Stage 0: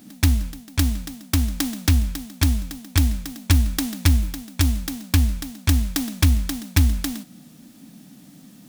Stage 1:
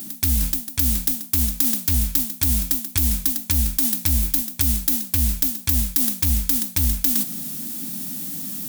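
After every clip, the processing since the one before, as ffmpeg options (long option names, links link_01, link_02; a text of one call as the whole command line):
ffmpeg -i in.wav -af "aemphasis=mode=production:type=75fm,alimiter=limit=0dB:level=0:latency=1:release=73,areverse,acompressor=threshold=-27dB:ratio=4,areverse,volume=8.5dB" out.wav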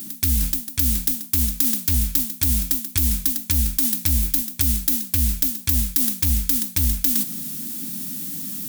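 ffmpeg -i in.wav -af "equalizer=frequency=780:width_type=o:width=1:gain=-6" out.wav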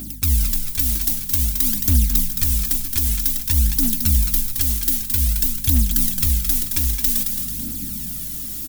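ffmpeg -i in.wav -filter_complex "[0:a]aeval=exprs='val(0)+0.00891*(sin(2*PI*50*n/s)+sin(2*PI*2*50*n/s)/2+sin(2*PI*3*50*n/s)/3+sin(2*PI*4*50*n/s)/4+sin(2*PI*5*50*n/s)/5)':channel_layout=same,aphaser=in_gain=1:out_gain=1:delay=3.1:decay=0.6:speed=0.52:type=triangular,asplit=2[link_01][link_02];[link_02]asplit=5[link_03][link_04][link_05][link_06][link_07];[link_03]adelay=219,afreqshift=-38,volume=-6dB[link_08];[link_04]adelay=438,afreqshift=-76,volume=-13.3dB[link_09];[link_05]adelay=657,afreqshift=-114,volume=-20.7dB[link_10];[link_06]adelay=876,afreqshift=-152,volume=-28dB[link_11];[link_07]adelay=1095,afreqshift=-190,volume=-35.3dB[link_12];[link_08][link_09][link_10][link_11][link_12]amix=inputs=5:normalize=0[link_13];[link_01][link_13]amix=inputs=2:normalize=0,volume=-2dB" out.wav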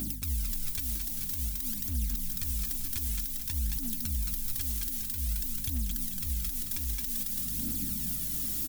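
ffmpeg -i in.wav -af "acompressor=threshold=-19dB:ratio=6,alimiter=limit=-19.5dB:level=0:latency=1:release=254,volume=-2dB" out.wav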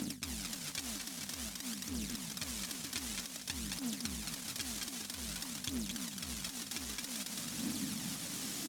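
ffmpeg -i in.wav -af "aeval=exprs='0.0891*(cos(1*acos(clip(val(0)/0.0891,-1,1)))-cos(1*PI/2))+0.0224*(cos(3*acos(clip(val(0)/0.0891,-1,1)))-cos(3*PI/2))':channel_layout=same,asoftclip=type=tanh:threshold=-29dB,highpass=210,lowpass=6900,volume=10.5dB" out.wav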